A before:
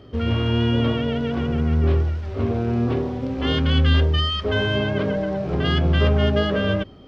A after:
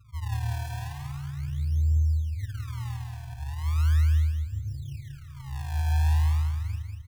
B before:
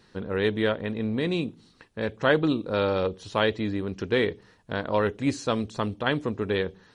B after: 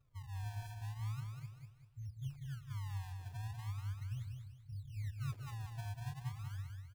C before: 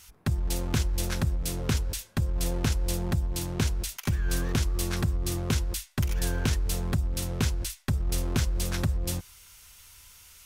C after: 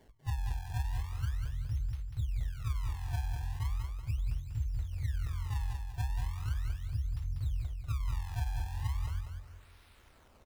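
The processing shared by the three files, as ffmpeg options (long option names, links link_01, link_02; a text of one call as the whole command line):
ffmpeg -i in.wav -filter_complex "[0:a]afftfilt=real='re*(1-between(b*sr/4096,150,8100))':imag='im*(1-between(b*sr/4096,150,8100))':win_size=4096:overlap=0.75,adynamicequalizer=threshold=0.00891:dfrequency=120:dqfactor=3.9:tfrequency=120:tqfactor=3.9:attack=5:release=100:ratio=0.375:range=2:mode=cutabove:tftype=bell,acrossover=split=690[link_01][link_02];[link_02]acompressor=threshold=-56dB:ratio=8[link_03];[link_01][link_03]amix=inputs=2:normalize=0,acrusher=samples=30:mix=1:aa=0.000001:lfo=1:lforange=48:lforate=0.38,asplit=2[link_04][link_05];[link_05]asoftclip=type=tanh:threshold=-28.5dB,volume=-11dB[link_06];[link_04][link_06]amix=inputs=2:normalize=0,aecho=1:1:193|386|579|772:0.562|0.191|0.065|0.0221,volume=-7.5dB" out.wav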